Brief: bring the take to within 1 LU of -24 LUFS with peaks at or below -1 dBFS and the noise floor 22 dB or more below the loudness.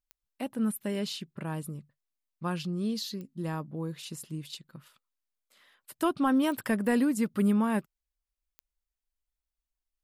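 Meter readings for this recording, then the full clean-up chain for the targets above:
clicks 5; loudness -31.0 LUFS; peak -15.0 dBFS; loudness target -24.0 LUFS
-> de-click; gain +7 dB

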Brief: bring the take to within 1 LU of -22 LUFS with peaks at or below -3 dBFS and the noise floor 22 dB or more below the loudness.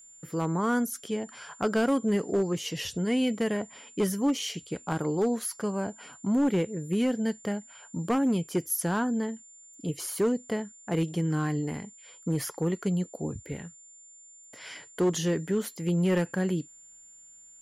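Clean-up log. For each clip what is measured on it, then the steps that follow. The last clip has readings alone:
clipped 1.0%; flat tops at -19.5 dBFS; steady tone 7200 Hz; tone level -50 dBFS; loudness -29.5 LUFS; peak -19.5 dBFS; loudness target -22.0 LUFS
-> clip repair -19.5 dBFS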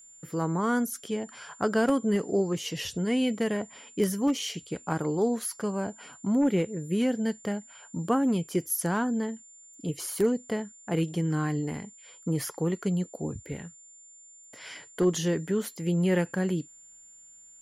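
clipped 0.0%; steady tone 7200 Hz; tone level -50 dBFS
-> notch 7200 Hz, Q 30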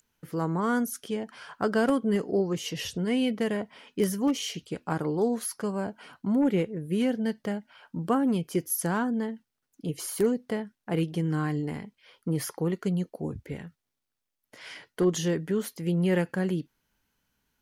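steady tone none; loudness -29.0 LUFS; peak -12.0 dBFS; loudness target -22.0 LUFS
-> gain +7 dB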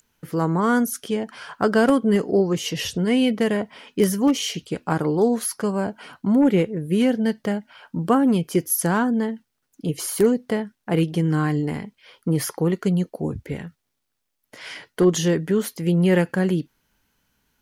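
loudness -22.0 LUFS; peak -5.0 dBFS; noise floor -77 dBFS

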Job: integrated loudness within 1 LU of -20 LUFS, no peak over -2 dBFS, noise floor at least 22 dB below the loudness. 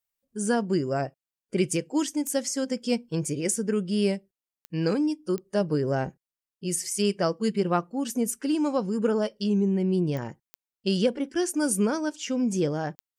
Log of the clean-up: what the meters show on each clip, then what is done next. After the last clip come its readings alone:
clicks 6; loudness -27.0 LUFS; peak -11.5 dBFS; loudness target -20.0 LUFS
-> de-click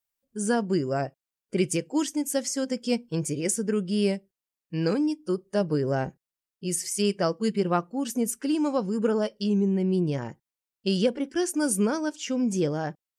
clicks 0; loudness -27.0 LUFS; peak -11.5 dBFS; loudness target -20.0 LUFS
-> gain +7 dB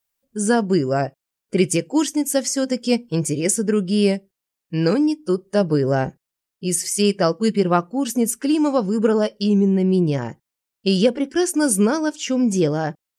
loudness -20.0 LUFS; peak -4.5 dBFS; noise floor -84 dBFS

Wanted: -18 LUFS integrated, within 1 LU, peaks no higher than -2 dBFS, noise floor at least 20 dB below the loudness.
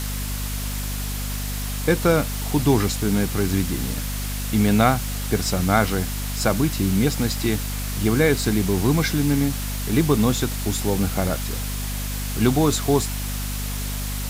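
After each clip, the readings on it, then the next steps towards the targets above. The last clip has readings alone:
hum 50 Hz; harmonics up to 250 Hz; hum level -26 dBFS; noise floor -27 dBFS; noise floor target -43 dBFS; loudness -22.5 LUFS; peak -3.5 dBFS; loudness target -18.0 LUFS
-> de-hum 50 Hz, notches 5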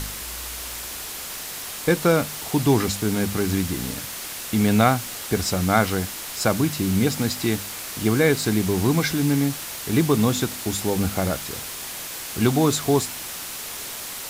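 hum none; noise floor -34 dBFS; noise floor target -43 dBFS
-> denoiser 9 dB, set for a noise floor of -34 dBFS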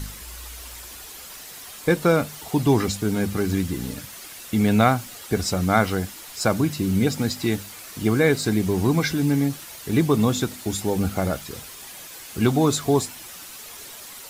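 noise floor -40 dBFS; noise floor target -43 dBFS
-> denoiser 6 dB, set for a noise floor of -40 dBFS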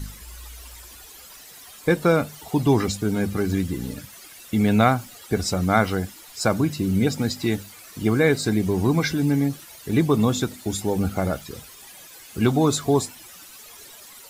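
noise floor -45 dBFS; loudness -22.5 LUFS; peak -4.0 dBFS; loudness target -18.0 LUFS
-> gain +4.5 dB; limiter -2 dBFS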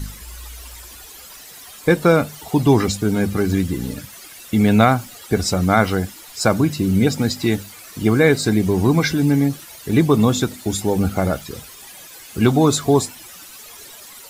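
loudness -18.5 LUFS; peak -2.0 dBFS; noise floor -40 dBFS

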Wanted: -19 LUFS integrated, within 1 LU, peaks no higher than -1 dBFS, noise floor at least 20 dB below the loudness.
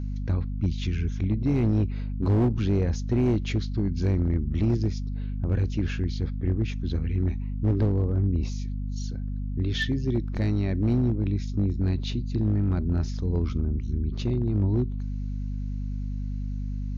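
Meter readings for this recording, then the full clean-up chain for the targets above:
clipped 1.8%; flat tops at -17.5 dBFS; hum 50 Hz; harmonics up to 250 Hz; hum level -28 dBFS; loudness -27.0 LUFS; peak -17.5 dBFS; loudness target -19.0 LUFS
-> clip repair -17.5 dBFS; notches 50/100/150/200/250 Hz; gain +8 dB

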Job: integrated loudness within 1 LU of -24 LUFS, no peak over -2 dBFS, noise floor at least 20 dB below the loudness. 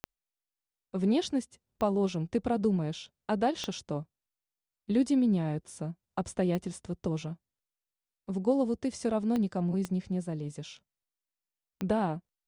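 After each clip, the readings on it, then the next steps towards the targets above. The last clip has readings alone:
clicks 7; loudness -31.5 LUFS; peak -15.5 dBFS; loudness target -24.0 LUFS
-> de-click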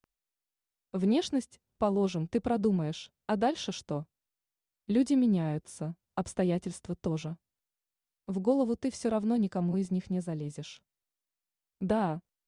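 clicks 0; loudness -31.5 LUFS; peak -15.5 dBFS; loudness target -24.0 LUFS
-> gain +7.5 dB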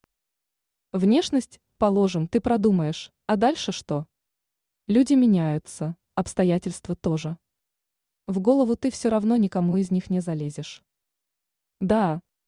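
loudness -24.0 LUFS; peak -8.0 dBFS; noise floor -83 dBFS

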